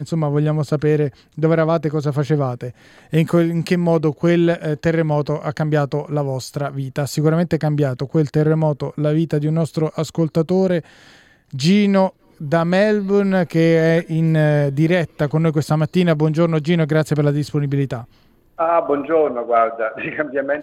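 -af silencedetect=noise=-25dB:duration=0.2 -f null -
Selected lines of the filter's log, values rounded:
silence_start: 1.09
silence_end: 1.38 | silence_duration: 0.29
silence_start: 2.70
silence_end: 3.13 | silence_duration: 0.43
silence_start: 10.80
silence_end: 11.54 | silence_duration: 0.74
silence_start: 12.09
silence_end: 12.41 | silence_duration: 0.32
silence_start: 18.01
silence_end: 18.59 | silence_duration: 0.58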